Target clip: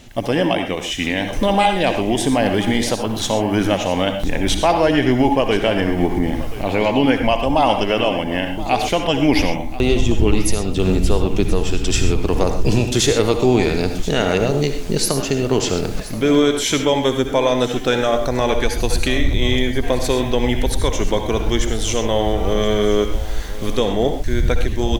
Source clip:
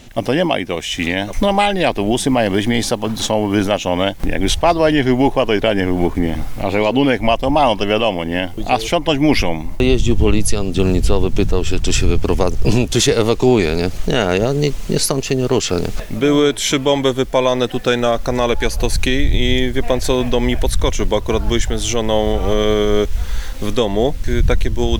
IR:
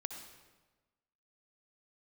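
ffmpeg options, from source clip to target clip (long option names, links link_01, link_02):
-filter_complex "[0:a]aecho=1:1:1029:0.15[link_01];[1:a]atrim=start_sample=2205,atrim=end_sample=6174[link_02];[link_01][link_02]afir=irnorm=-1:irlink=0"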